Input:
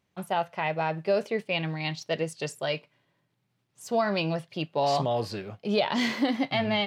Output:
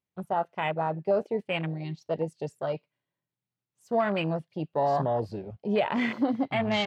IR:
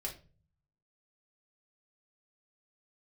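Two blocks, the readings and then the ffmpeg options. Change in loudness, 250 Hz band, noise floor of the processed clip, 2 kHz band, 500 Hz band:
-1.0 dB, 0.0 dB, under -85 dBFS, -2.5 dB, 0.0 dB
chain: -af "afwtdn=0.0282"

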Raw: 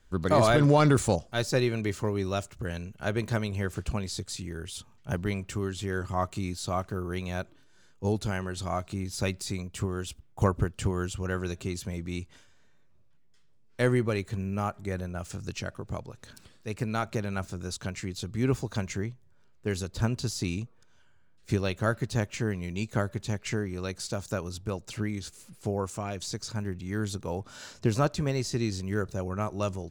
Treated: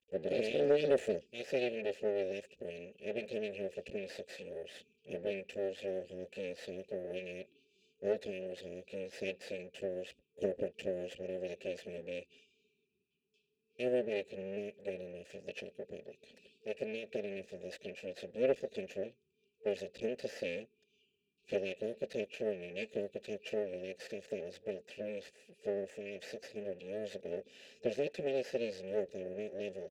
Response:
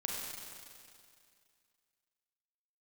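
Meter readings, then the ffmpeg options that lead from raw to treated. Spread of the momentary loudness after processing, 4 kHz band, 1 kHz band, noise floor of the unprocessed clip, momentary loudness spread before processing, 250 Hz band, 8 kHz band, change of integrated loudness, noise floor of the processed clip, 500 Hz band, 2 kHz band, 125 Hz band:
12 LU, -11.0 dB, -20.5 dB, -58 dBFS, 11 LU, -13.5 dB, under -20 dB, -8.5 dB, -80 dBFS, -3.5 dB, -10.5 dB, -24.5 dB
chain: -filter_complex "[0:a]afftfilt=real='re*(1-between(b*sr/4096,450,2300))':imag='im*(1-between(b*sr/4096,450,2300))':win_size=4096:overlap=0.75,aecho=1:1:4.6:0.64,aeval=exprs='max(val(0),0)':c=same,asplit=3[s0][s1][s2];[s0]bandpass=f=530:t=q:w=8,volume=1[s3];[s1]bandpass=f=1840:t=q:w=8,volume=0.501[s4];[s2]bandpass=f=2480:t=q:w=8,volume=0.355[s5];[s3][s4][s5]amix=inputs=3:normalize=0,asoftclip=type=tanh:threshold=0.0355,volume=3.76"

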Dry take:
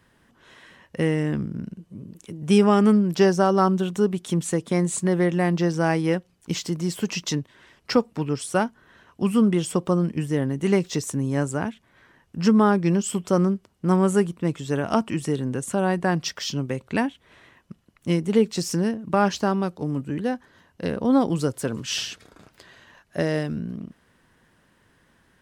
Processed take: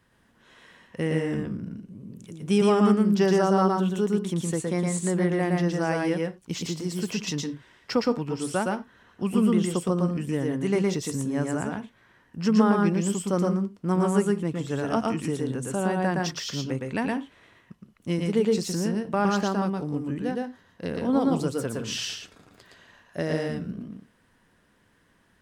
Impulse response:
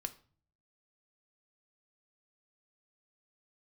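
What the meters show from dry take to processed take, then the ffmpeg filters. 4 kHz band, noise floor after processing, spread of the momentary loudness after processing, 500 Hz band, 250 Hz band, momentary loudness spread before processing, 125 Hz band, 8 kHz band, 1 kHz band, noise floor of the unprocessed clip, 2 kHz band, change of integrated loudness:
-2.5 dB, -64 dBFS, 13 LU, -2.5 dB, -2.5 dB, 12 LU, -3.0 dB, -2.5 dB, -2.5 dB, -63 dBFS, -2.5 dB, -2.5 dB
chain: -filter_complex "[0:a]asplit=2[s0][s1];[1:a]atrim=start_sample=2205,afade=t=out:st=0.15:d=0.01,atrim=end_sample=7056,adelay=115[s2];[s1][s2]afir=irnorm=-1:irlink=0,volume=1[s3];[s0][s3]amix=inputs=2:normalize=0,volume=0.562"

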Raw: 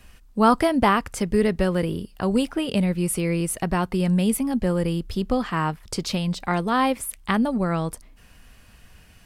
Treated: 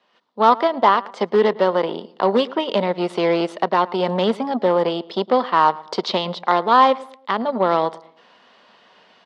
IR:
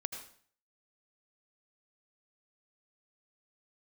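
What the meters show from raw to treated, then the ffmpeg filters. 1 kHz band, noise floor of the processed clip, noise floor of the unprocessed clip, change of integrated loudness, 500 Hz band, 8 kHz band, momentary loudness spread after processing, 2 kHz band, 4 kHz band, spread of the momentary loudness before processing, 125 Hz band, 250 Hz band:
+8.5 dB, -54 dBFS, -51 dBFS, +4.0 dB, +7.0 dB, under -15 dB, 7 LU, +2.0 dB, +5.5 dB, 8 LU, -8.0 dB, -2.5 dB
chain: -filter_complex "[0:a]dynaudnorm=f=120:g=3:m=4.47,aeval=exprs='0.944*(cos(1*acos(clip(val(0)/0.944,-1,1)))-cos(1*PI/2))+0.0944*(cos(4*acos(clip(val(0)/0.944,-1,1)))-cos(4*PI/2))+0.15*(cos(5*acos(clip(val(0)/0.944,-1,1)))-cos(5*PI/2))+0.0596*(cos(6*acos(clip(val(0)/0.944,-1,1)))-cos(6*PI/2))+0.15*(cos(7*acos(clip(val(0)/0.944,-1,1)))-cos(7*PI/2))':c=same,highpass=f=270:w=0.5412,highpass=f=270:w=1.3066,equalizer=f=290:t=q:w=4:g=-9,equalizer=f=590:t=q:w=4:g=3,equalizer=f=970:t=q:w=4:g=6,equalizer=f=1600:t=q:w=4:g=-5,equalizer=f=2500:t=q:w=4:g=-9,equalizer=f=3600:t=q:w=4:g=3,lowpass=f=4200:w=0.5412,lowpass=f=4200:w=1.3066,asplit=2[s0][s1];[s1]adelay=110,lowpass=f=1700:p=1,volume=0.112,asplit=2[s2][s3];[s3]adelay=110,lowpass=f=1700:p=1,volume=0.38,asplit=2[s4][s5];[s5]adelay=110,lowpass=f=1700:p=1,volume=0.38[s6];[s2][s4][s6]amix=inputs=3:normalize=0[s7];[s0][s7]amix=inputs=2:normalize=0,volume=0.708"

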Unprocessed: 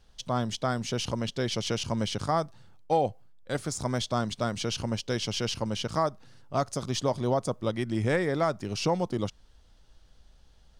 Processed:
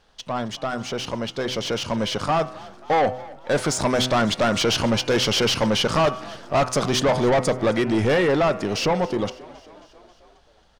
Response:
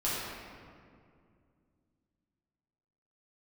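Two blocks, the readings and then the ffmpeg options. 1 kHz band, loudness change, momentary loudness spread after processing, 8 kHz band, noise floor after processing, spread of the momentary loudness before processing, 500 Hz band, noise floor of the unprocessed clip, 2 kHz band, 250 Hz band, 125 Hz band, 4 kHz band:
+7.5 dB, +8.0 dB, 9 LU, +7.5 dB, -56 dBFS, 4 LU, +8.5 dB, -58 dBFS, +10.5 dB, +7.5 dB, +3.5 dB, +9.5 dB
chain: -filter_complex "[0:a]asplit=2[s0][s1];[s1]highpass=f=720:p=1,volume=7.94,asoftclip=type=tanh:threshold=0.188[s2];[s0][s2]amix=inputs=2:normalize=0,lowpass=f=6400:p=1,volume=0.501,bandreject=f=126.8:t=h:w=4,bandreject=f=253.6:t=h:w=4,bandreject=f=380.4:t=h:w=4,bandreject=f=507.2:t=h:w=4,bandreject=f=634:t=h:w=4,bandreject=f=760.8:t=h:w=4,bandreject=f=887.6:t=h:w=4,bandreject=f=1014.4:t=h:w=4,bandreject=f=1141.2:t=h:w=4,bandreject=f=1268:t=h:w=4,bandreject=f=1394.8:t=h:w=4,bandreject=f=1521.6:t=h:w=4,bandreject=f=1648.4:t=h:w=4,bandreject=f=1775.2:t=h:w=4,bandreject=f=1902:t=h:w=4,bandreject=f=2028.8:t=h:w=4,bandreject=f=2155.6:t=h:w=4,bandreject=f=2282.4:t=h:w=4,bandreject=f=2409.2:t=h:w=4,bandreject=f=2536:t=h:w=4,bandreject=f=2662.8:t=h:w=4,bandreject=f=2789.6:t=h:w=4,bandreject=f=2916.4:t=h:w=4,dynaudnorm=f=250:g=21:m=4.73,highshelf=f=2300:g=-9,asoftclip=type=tanh:threshold=0.178,asplit=6[s3][s4][s5][s6][s7][s8];[s4]adelay=269,afreqshift=44,volume=0.0891[s9];[s5]adelay=538,afreqshift=88,volume=0.0569[s10];[s6]adelay=807,afreqshift=132,volume=0.0363[s11];[s7]adelay=1076,afreqshift=176,volume=0.0234[s12];[s8]adelay=1345,afreqshift=220,volume=0.015[s13];[s3][s9][s10][s11][s12][s13]amix=inputs=6:normalize=0"

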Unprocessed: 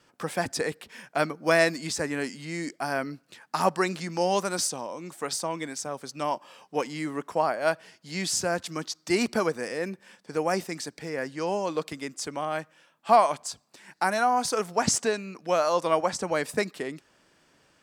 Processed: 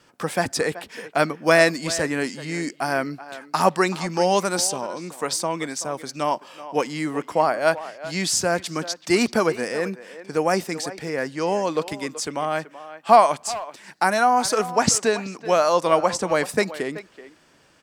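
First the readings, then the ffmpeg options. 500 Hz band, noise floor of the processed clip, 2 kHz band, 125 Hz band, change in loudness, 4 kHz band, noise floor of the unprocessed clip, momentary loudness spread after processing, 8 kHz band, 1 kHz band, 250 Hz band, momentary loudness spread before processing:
+5.5 dB, -56 dBFS, +5.5 dB, +5.5 dB, +5.5 dB, +5.5 dB, -65 dBFS, 12 LU, +5.5 dB, +5.5 dB, +5.5 dB, 12 LU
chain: -filter_complex "[0:a]asplit=2[s0][s1];[s1]adelay=380,highpass=300,lowpass=3400,asoftclip=type=hard:threshold=0.15,volume=0.2[s2];[s0][s2]amix=inputs=2:normalize=0,volume=1.88"

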